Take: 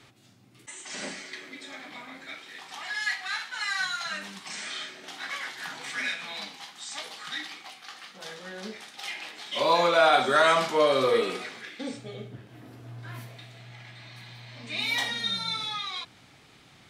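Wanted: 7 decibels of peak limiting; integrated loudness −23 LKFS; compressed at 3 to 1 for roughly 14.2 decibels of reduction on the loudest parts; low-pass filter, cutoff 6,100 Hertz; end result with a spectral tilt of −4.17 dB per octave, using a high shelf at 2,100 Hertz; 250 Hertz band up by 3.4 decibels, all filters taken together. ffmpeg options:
ffmpeg -i in.wav -af "lowpass=6100,equalizer=frequency=250:width_type=o:gain=4.5,highshelf=frequency=2100:gain=-6.5,acompressor=threshold=-37dB:ratio=3,volume=18dB,alimiter=limit=-12.5dB:level=0:latency=1" out.wav

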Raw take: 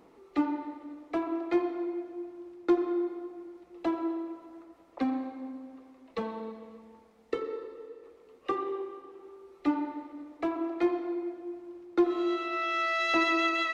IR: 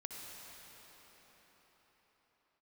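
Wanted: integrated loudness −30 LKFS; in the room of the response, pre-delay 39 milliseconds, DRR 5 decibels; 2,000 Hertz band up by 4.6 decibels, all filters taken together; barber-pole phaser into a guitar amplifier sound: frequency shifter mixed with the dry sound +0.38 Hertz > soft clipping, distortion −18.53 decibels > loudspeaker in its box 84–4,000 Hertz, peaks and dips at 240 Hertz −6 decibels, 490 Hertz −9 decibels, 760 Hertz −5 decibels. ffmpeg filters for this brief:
-filter_complex "[0:a]equalizer=frequency=2000:width_type=o:gain=5.5,asplit=2[link_01][link_02];[1:a]atrim=start_sample=2205,adelay=39[link_03];[link_02][link_03]afir=irnorm=-1:irlink=0,volume=-3.5dB[link_04];[link_01][link_04]amix=inputs=2:normalize=0,asplit=2[link_05][link_06];[link_06]afreqshift=0.38[link_07];[link_05][link_07]amix=inputs=2:normalize=1,asoftclip=threshold=-19.5dB,highpass=84,equalizer=frequency=240:width_type=q:width=4:gain=-6,equalizer=frequency=490:width_type=q:width=4:gain=-9,equalizer=frequency=760:width_type=q:width=4:gain=-5,lowpass=frequency=4000:width=0.5412,lowpass=frequency=4000:width=1.3066,volume=3.5dB"

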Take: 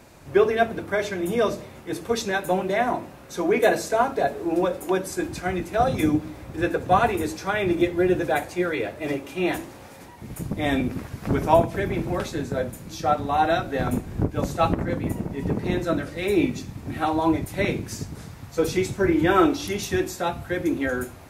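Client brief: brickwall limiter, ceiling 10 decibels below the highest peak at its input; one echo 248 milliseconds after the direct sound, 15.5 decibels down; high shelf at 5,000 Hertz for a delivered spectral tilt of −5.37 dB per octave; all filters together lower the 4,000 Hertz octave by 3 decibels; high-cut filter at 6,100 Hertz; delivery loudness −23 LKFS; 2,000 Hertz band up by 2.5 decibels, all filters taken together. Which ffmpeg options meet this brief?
ffmpeg -i in.wav -af "lowpass=6100,equalizer=frequency=2000:width_type=o:gain=4,equalizer=frequency=4000:width_type=o:gain=-5.5,highshelf=frequency=5000:gain=3,alimiter=limit=-14.5dB:level=0:latency=1,aecho=1:1:248:0.168,volume=3dB" out.wav

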